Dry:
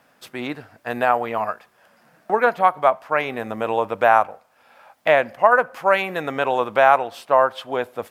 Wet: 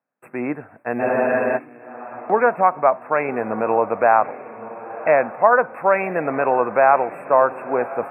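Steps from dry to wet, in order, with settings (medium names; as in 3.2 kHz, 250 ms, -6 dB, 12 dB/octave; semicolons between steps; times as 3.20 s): in parallel at 0 dB: peak limiter -13 dBFS, peak gain reduction 11.5 dB; on the sum: brick-wall FIR band-stop 2.7–7.7 kHz; treble shelf 5.6 kHz -9.5 dB; gate -48 dBFS, range -29 dB; high-pass 140 Hz 12 dB/octave; treble shelf 2.6 kHz -11 dB; on a send: echo that smears into a reverb 1041 ms, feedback 41%, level -15 dB; on the sum: spectral freeze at 1.03 s, 0.54 s; trim -1 dB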